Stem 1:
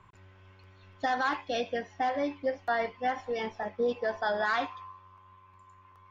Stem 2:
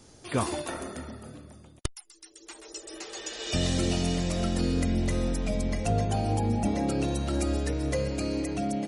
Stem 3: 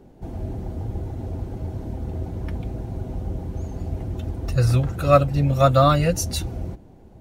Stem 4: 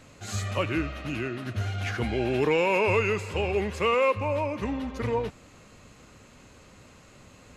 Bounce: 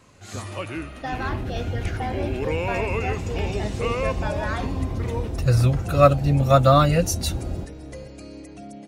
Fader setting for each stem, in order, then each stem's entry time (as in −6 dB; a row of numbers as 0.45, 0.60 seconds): −2.0, −10.0, +0.5, −4.0 decibels; 0.00, 0.00, 0.90, 0.00 seconds